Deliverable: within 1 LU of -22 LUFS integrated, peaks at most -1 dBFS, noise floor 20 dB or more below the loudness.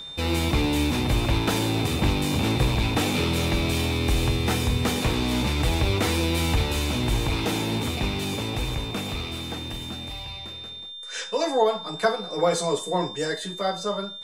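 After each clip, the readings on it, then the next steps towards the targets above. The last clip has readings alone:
steady tone 3600 Hz; tone level -36 dBFS; loudness -25.0 LUFS; peak -9.0 dBFS; loudness target -22.0 LUFS
-> notch 3600 Hz, Q 30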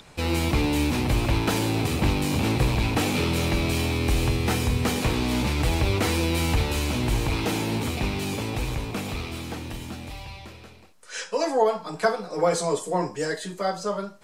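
steady tone none; loudness -25.5 LUFS; peak -8.5 dBFS; loudness target -22.0 LUFS
-> gain +3.5 dB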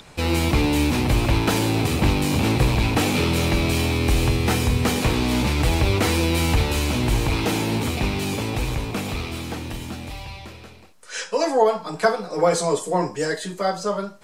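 loudness -22.0 LUFS; peak -5.0 dBFS; noise floor -43 dBFS

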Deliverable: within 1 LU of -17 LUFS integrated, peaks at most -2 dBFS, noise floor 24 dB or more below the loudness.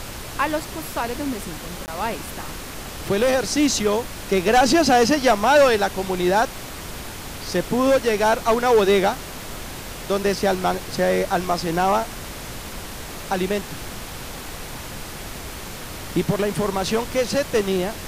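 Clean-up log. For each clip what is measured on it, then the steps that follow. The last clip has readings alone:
dropouts 1; longest dropout 19 ms; noise floor -35 dBFS; noise floor target -45 dBFS; loudness -21.0 LUFS; peak -8.0 dBFS; loudness target -17.0 LUFS
-> interpolate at 1.86, 19 ms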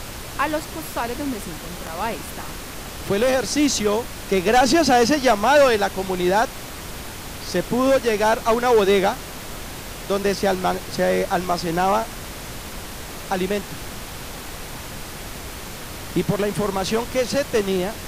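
dropouts 0; noise floor -35 dBFS; noise floor target -45 dBFS
-> noise print and reduce 10 dB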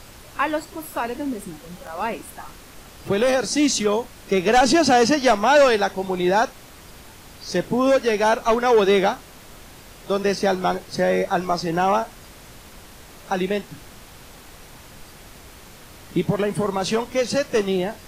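noise floor -44 dBFS; noise floor target -45 dBFS
-> noise print and reduce 6 dB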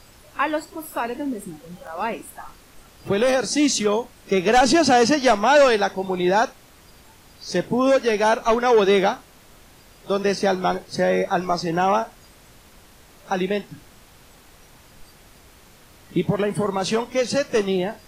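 noise floor -50 dBFS; loudness -20.5 LUFS; peak -8.0 dBFS; loudness target -17.0 LUFS
-> gain +3.5 dB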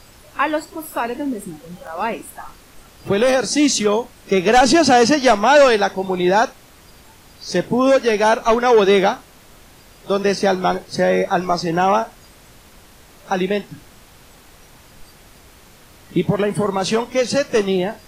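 loudness -17.0 LUFS; peak -4.5 dBFS; noise floor -47 dBFS

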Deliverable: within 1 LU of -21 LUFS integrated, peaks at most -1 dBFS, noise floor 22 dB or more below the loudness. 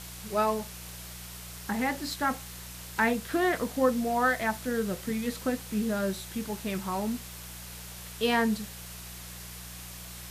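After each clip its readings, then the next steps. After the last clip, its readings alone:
hum 60 Hz; harmonics up to 180 Hz; hum level -45 dBFS; noise floor -43 dBFS; noise floor target -52 dBFS; loudness -30.0 LUFS; peak -12.0 dBFS; loudness target -21.0 LUFS
-> de-hum 60 Hz, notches 3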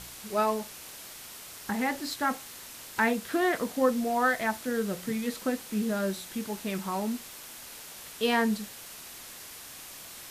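hum none; noise floor -45 dBFS; noise floor target -52 dBFS
-> denoiser 7 dB, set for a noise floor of -45 dBFS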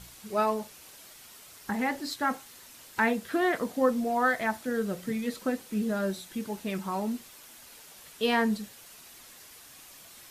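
noise floor -51 dBFS; noise floor target -52 dBFS
-> denoiser 6 dB, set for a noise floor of -51 dBFS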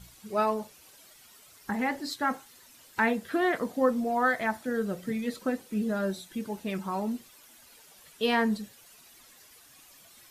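noise floor -56 dBFS; loudness -30.0 LUFS; peak -12.0 dBFS; loudness target -21.0 LUFS
-> gain +9 dB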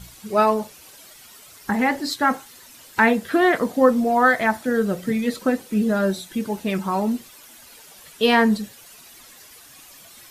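loudness -21.0 LUFS; peak -3.0 dBFS; noise floor -47 dBFS

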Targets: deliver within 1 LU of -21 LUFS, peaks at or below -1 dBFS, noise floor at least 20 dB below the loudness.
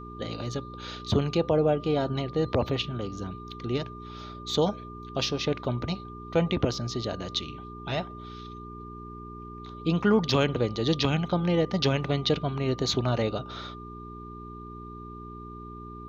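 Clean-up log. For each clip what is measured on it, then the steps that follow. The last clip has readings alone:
hum 60 Hz; harmonics up to 420 Hz; hum level -40 dBFS; steady tone 1200 Hz; tone level -43 dBFS; loudness -28.0 LUFS; peak -9.0 dBFS; loudness target -21.0 LUFS
-> de-hum 60 Hz, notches 7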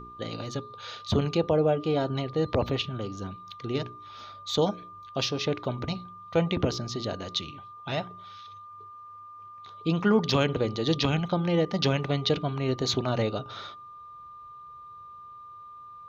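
hum none; steady tone 1200 Hz; tone level -43 dBFS
-> notch 1200 Hz, Q 30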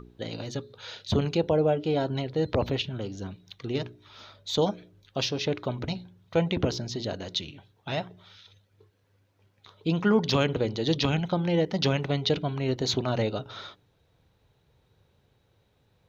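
steady tone none; loudness -28.0 LUFS; peak -9.0 dBFS; loudness target -21.0 LUFS
-> gain +7 dB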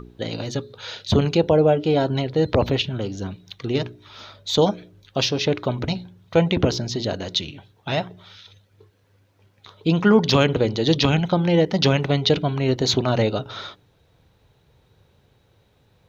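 loudness -21.0 LUFS; peak -2.0 dBFS; noise floor -61 dBFS

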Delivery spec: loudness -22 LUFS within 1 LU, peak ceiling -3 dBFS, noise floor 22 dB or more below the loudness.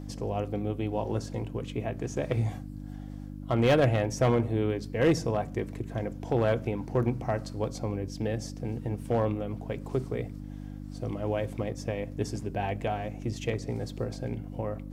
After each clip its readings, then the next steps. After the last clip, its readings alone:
clipped 0.3%; flat tops at -17.0 dBFS; hum 50 Hz; harmonics up to 300 Hz; hum level -37 dBFS; loudness -30.5 LUFS; peak -17.0 dBFS; loudness target -22.0 LUFS
-> clip repair -17 dBFS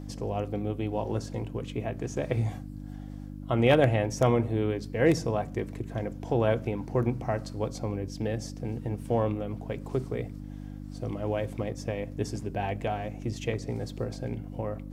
clipped 0.0%; hum 50 Hz; harmonics up to 300 Hz; hum level -37 dBFS
-> de-hum 50 Hz, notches 6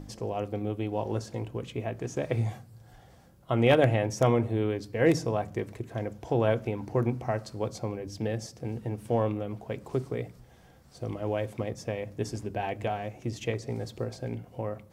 hum none; loudness -30.5 LUFS; peak -8.5 dBFS; loudness target -22.0 LUFS
-> gain +8.5 dB; limiter -3 dBFS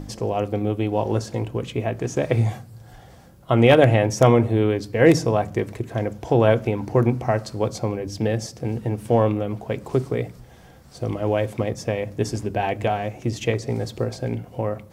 loudness -22.5 LUFS; peak -3.0 dBFS; noise floor -47 dBFS

